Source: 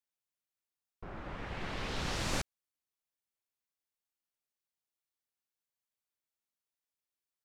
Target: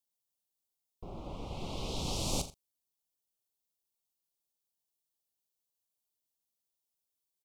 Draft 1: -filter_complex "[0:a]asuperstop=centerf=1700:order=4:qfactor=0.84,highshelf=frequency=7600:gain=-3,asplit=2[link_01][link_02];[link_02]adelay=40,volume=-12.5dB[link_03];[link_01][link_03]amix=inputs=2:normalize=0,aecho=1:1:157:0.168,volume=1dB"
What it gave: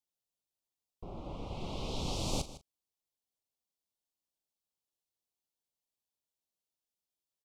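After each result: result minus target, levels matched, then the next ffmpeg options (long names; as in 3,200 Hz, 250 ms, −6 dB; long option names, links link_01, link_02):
echo 72 ms late; 8,000 Hz band −3.0 dB
-filter_complex "[0:a]asuperstop=centerf=1700:order=4:qfactor=0.84,highshelf=frequency=7600:gain=-3,asplit=2[link_01][link_02];[link_02]adelay=40,volume=-12.5dB[link_03];[link_01][link_03]amix=inputs=2:normalize=0,aecho=1:1:85:0.168,volume=1dB"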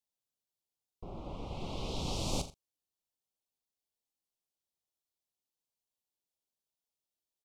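8,000 Hz band −3.0 dB
-filter_complex "[0:a]asuperstop=centerf=1700:order=4:qfactor=0.84,highshelf=frequency=7600:gain=6.5,asplit=2[link_01][link_02];[link_02]adelay=40,volume=-12.5dB[link_03];[link_01][link_03]amix=inputs=2:normalize=0,aecho=1:1:85:0.168,volume=1dB"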